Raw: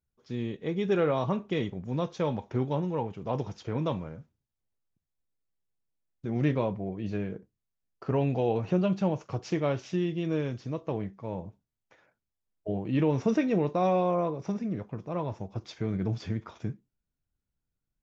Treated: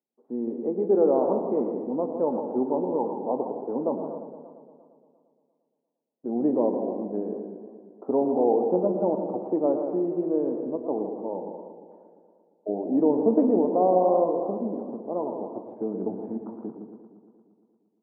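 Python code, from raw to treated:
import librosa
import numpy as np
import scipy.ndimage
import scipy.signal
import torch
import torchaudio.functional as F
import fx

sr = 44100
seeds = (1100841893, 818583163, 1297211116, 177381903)

y = scipy.signal.sosfilt(scipy.signal.ellip(3, 1.0, 80, [240.0, 860.0], 'bandpass', fs=sr, output='sos'), x)
y = fx.echo_multitap(y, sr, ms=(103, 161, 273), db=(-14.0, -9.0, -14.0))
y = fx.echo_warbled(y, sr, ms=116, feedback_pct=71, rate_hz=2.8, cents=129, wet_db=-11)
y = y * 10.0 ** (5.5 / 20.0)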